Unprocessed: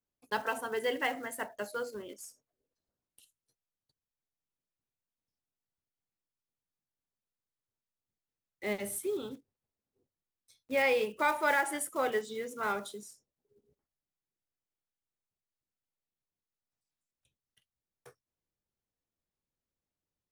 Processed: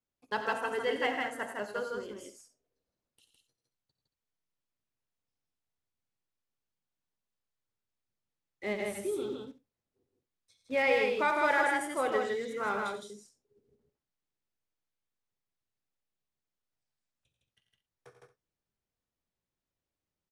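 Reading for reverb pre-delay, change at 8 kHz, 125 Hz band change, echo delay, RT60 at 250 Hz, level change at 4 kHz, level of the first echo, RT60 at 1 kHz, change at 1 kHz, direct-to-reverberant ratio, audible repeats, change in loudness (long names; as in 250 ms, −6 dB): no reverb audible, −5.5 dB, can't be measured, 56 ms, no reverb audible, +1.0 dB, −17.5 dB, no reverb audible, +2.0 dB, no reverb audible, 4, +1.5 dB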